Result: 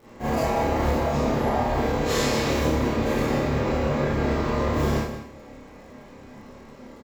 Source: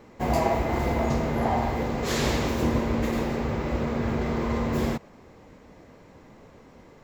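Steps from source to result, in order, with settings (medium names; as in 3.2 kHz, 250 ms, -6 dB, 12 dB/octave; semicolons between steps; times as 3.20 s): peak limiter -19.5 dBFS, peak gain reduction 8 dB; doubling 28 ms -5 dB; on a send: delay 178 ms -11.5 dB; on the sum: Schroeder reverb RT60 0.47 s, combs from 28 ms, DRR -9.5 dB; crackle 91 per s -43 dBFS; trim -6 dB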